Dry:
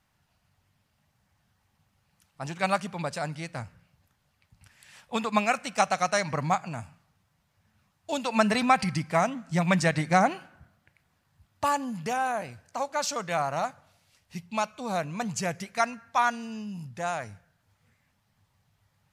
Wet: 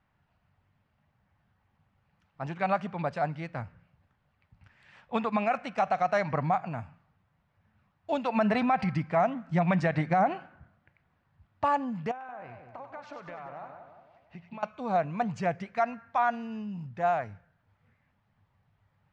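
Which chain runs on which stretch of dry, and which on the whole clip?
12.11–14.63 s: tone controls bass -5 dB, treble -11 dB + compression 10:1, threshold -39 dBFS + two-band feedback delay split 930 Hz, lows 175 ms, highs 96 ms, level -6 dB
whole clip: low-pass 2.2 kHz 12 dB/octave; dynamic bell 710 Hz, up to +7 dB, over -39 dBFS, Q 4.2; peak limiter -16.5 dBFS

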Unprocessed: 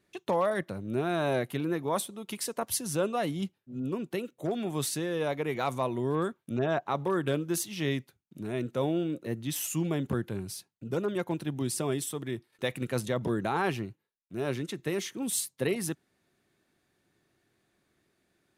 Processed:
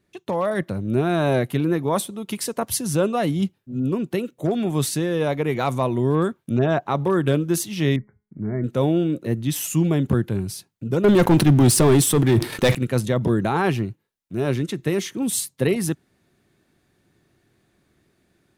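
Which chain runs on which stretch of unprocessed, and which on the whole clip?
7.96–8.64 s: brick-wall FIR low-pass 2.3 kHz + bass shelf 150 Hz +8.5 dB + feedback comb 210 Hz, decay 0.4 s, mix 50%
11.04–12.75 s: waveshaping leveller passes 3 + decay stretcher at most 68 dB/s
whole clip: bass shelf 260 Hz +8 dB; level rider gain up to 6 dB

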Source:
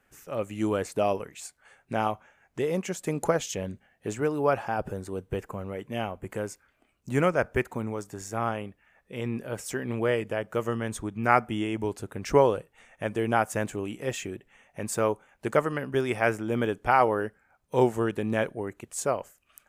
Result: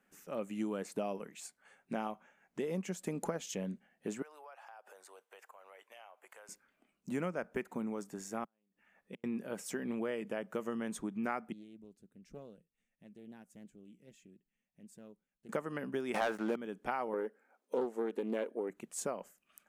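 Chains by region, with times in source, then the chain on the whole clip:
4.22–6.49 s: high-pass 670 Hz 24 dB/octave + compression 5:1, threshold -45 dBFS
8.44–9.24 s: compression 4:1, threshold -32 dBFS + inverted gate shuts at -29 dBFS, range -40 dB
11.52–15.49 s: amplifier tone stack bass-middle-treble 10-0-1 + loudspeaker Doppler distortion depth 0.41 ms
16.14–16.56 s: high-pass 170 Hz 6 dB/octave + peaking EQ 990 Hz +11 dB 2.3 oct + waveshaping leveller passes 3
17.13–18.70 s: brick-wall FIR high-pass 210 Hz + peaking EQ 470 Hz +10 dB 0.73 oct + loudspeaker Doppler distortion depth 0.32 ms
whole clip: resonant low shelf 140 Hz -10 dB, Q 3; compression 5:1, threshold -26 dBFS; trim -7 dB

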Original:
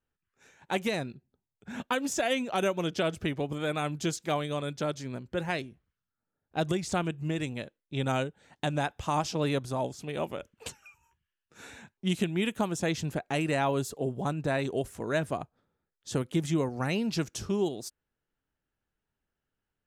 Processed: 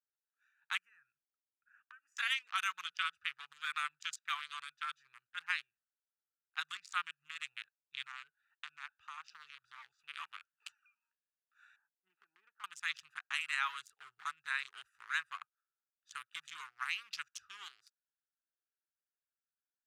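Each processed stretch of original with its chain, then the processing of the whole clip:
0.78–2.17 s: compression 1.5:1, threshold -53 dBFS + static phaser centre 1.6 kHz, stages 4
8.03–9.99 s: compression, threshold -31 dBFS + distance through air 64 m
11.76–12.64 s: Chebyshev band-pass 290–910 Hz + compression 8:1, threshold -31 dBFS
whole clip: local Wiener filter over 41 samples; elliptic high-pass 1.2 kHz, stop band 50 dB; treble shelf 4 kHz -7.5 dB; trim +3 dB

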